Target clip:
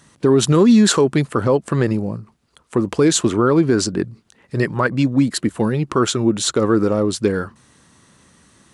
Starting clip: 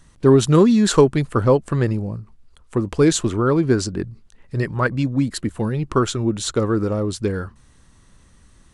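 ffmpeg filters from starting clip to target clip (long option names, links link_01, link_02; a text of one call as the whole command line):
ffmpeg -i in.wav -af "highpass=150,alimiter=limit=-11dB:level=0:latency=1:release=68,volume=5.5dB" out.wav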